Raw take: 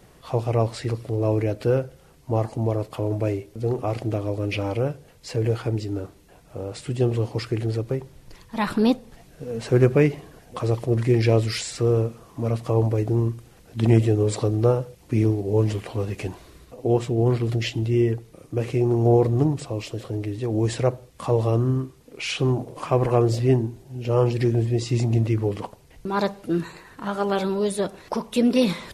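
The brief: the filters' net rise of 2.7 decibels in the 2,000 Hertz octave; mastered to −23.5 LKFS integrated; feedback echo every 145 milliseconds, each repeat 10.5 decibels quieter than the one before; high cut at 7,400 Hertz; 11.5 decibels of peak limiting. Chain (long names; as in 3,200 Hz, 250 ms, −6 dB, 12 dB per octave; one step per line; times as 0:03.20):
low-pass filter 7,400 Hz
parametric band 2,000 Hz +3.5 dB
brickwall limiter −16.5 dBFS
repeating echo 145 ms, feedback 30%, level −10.5 dB
level +3.5 dB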